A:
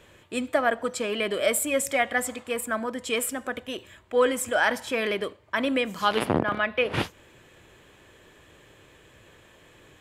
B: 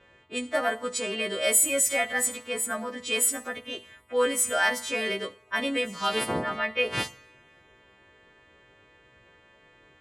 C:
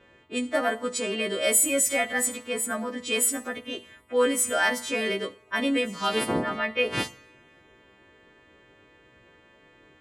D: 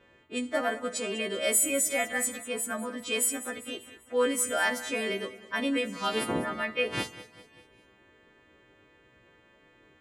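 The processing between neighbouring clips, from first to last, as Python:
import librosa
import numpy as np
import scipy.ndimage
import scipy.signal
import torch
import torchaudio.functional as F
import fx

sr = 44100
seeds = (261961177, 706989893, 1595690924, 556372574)

y1 = fx.freq_snap(x, sr, grid_st=2)
y1 = fx.env_lowpass(y1, sr, base_hz=2100.0, full_db=-19.5)
y1 = fx.rev_double_slope(y1, sr, seeds[0], early_s=0.49, late_s=3.1, knee_db=-28, drr_db=14.0)
y1 = y1 * 10.0 ** (-3.5 / 20.0)
y2 = fx.peak_eq(y1, sr, hz=280.0, db=6.0, octaves=1.1)
y3 = fx.echo_feedback(y2, sr, ms=197, feedback_pct=49, wet_db=-15.5)
y3 = y3 * 10.0 ** (-3.5 / 20.0)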